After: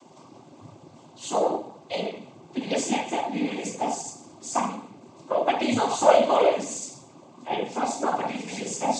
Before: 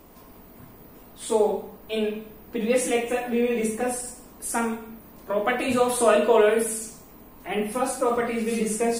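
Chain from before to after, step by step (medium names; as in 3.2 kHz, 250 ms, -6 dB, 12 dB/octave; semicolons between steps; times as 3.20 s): static phaser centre 310 Hz, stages 8; noise-vocoded speech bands 16; trim +4.5 dB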